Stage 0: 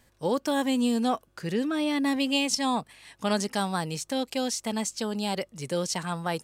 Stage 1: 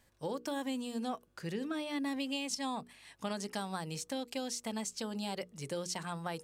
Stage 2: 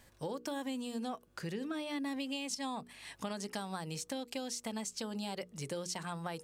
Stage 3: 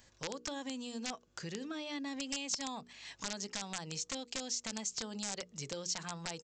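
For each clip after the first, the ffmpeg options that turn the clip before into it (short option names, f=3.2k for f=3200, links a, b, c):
-af "acompressor=threshold=-27dB:ratio=6,bandreject=f=60:t=h:w=6,bandreject=f=120:t=h:w=6,bandreject=f=180:t=h:w=6,bandreject=f=240:t=h:w=6,bandreject=f=300:t=h:w=6,bandreject=f=360:t=h:w=6,bandreject=f=420:t=h:w=6,bandreject=f=480:t=h:w=6,volume=-6dB"
-af "acompressor=threshold=-50dB:ratio=2,volume=7dB"
-af "aresample=16000,aeval=exprs='(mod(28.2*val(0)+1,2)-1)/28.2':c=same,aresample=44100,crystalizer=i=2.5:c=0,volume=-3.5dB"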